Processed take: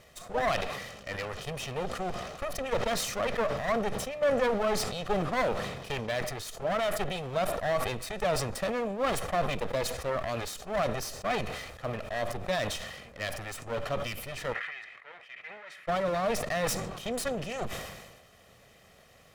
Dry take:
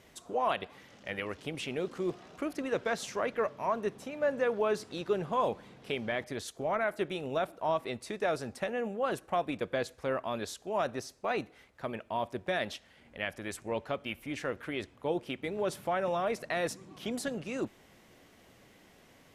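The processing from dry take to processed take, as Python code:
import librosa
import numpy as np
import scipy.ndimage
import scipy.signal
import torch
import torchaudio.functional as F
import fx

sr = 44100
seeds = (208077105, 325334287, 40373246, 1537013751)

y = fx.lower_of_two(x, sr, delay_ms=1.6)
y = fx.bandpass_q(y, sr, hz=2000.0, q=4.0, at=(14.52, 15.87), fade=0.02)
y = fx.sustainer(y, sr, db_per_s=44.0)
y = F.gain(torch.from_numpy(y), 3.0).numpy()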